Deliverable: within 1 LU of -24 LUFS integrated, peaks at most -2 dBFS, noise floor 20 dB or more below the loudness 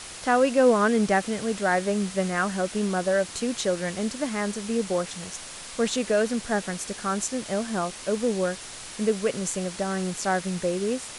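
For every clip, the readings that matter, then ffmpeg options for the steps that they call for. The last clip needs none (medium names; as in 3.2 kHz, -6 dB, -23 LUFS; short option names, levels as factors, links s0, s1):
noise floor -40 dBFS; noise floor target -46 dBFS; loudness -26.0 LUFS; peak level -9.0 dBFS; loudness target -24.0 LUFS
-> -af "afftdn=nr=6:nf=-40"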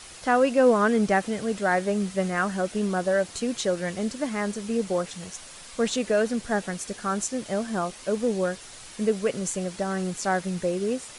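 noise floor -45 dBFS; noise floor target -46 dBFS
-> -af "afftdn=nr=6:nf=-45"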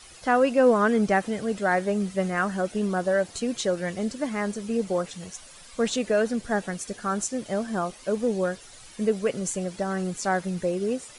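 noise floor -48 dBFS; loudness -26.0 LUFS; peak level -9.5 dBFS; loudness target -24.0 LUFS
-> -af "volume=1.26"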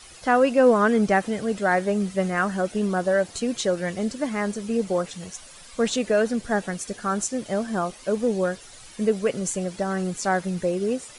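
loudness -24.0 LUFS; peak level -7.5 dBFS; noise floor -46 dBFS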